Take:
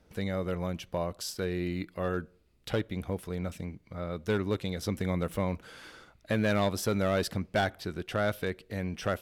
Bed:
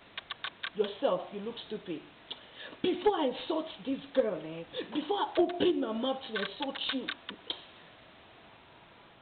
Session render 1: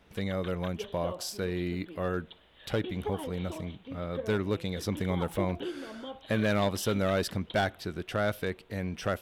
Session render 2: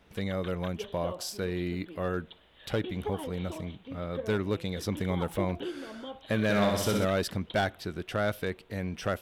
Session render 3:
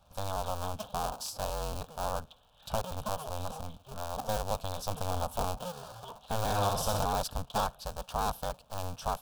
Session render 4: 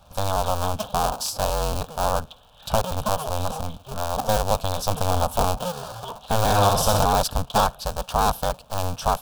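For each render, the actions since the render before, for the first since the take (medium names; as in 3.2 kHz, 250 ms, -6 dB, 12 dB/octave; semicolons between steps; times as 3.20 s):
add bed -9.5 dB
6.43–7.05 s: flutter echo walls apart 10.9 m, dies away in 0.9 s
cycle switcher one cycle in 2, inverted; static phaser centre 830 Hz, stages 4
trim +11 dB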